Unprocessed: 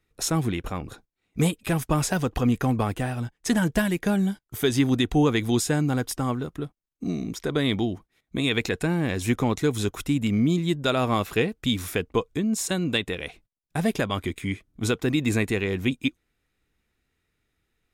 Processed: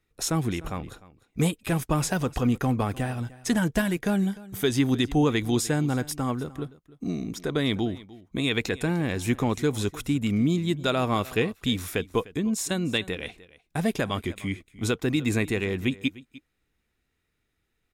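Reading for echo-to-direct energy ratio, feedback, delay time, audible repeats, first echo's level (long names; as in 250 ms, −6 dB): −19.5 dB, repeats not evenly spaced, 301 ms, 1, −19.5 dB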